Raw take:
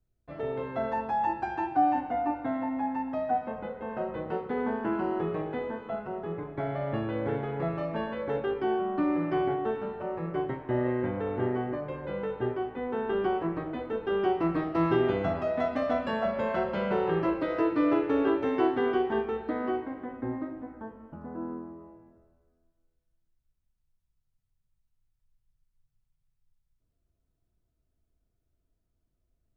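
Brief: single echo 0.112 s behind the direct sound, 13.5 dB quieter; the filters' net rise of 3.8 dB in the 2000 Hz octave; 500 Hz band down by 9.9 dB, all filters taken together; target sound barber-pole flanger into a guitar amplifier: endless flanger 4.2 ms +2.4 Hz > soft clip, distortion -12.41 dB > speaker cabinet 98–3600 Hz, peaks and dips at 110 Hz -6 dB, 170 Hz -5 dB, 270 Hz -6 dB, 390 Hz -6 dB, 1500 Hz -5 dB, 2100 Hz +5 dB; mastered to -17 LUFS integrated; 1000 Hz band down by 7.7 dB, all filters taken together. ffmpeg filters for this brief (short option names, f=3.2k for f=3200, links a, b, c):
-filter_complex "[0:a]equalizer=f=500:t=o:g=-7,equalizer=f=1k:t=o:g=-8.5,equalizer=f=2k:t=o:g=7.5,aecho=1:1:112:0.211,asplit=2[a][b];[b]adelay=4.2,afreqshift=2.4[c];[a][c]amix=inputs=2:normalize=1,asoftclip=threshold=-31.5dB,highpass=98,equalizer=f=110:t=q:w=4:g=-6,equalizer=f=170:t=q:w=4:g=-5,equalizer=f=270:t=q:w=4:g=-6,equalizer=f=390:t=q:w=4:g=-6,equalizer=f=1.5k:t=q:w=4:g=-5,equalizer=f=2.1k:t=q:w=4:g=5,lowpass=f=3.6k:w=0.5412,lowpass=f=3.6k:w=1.3066,volume=24.5dB"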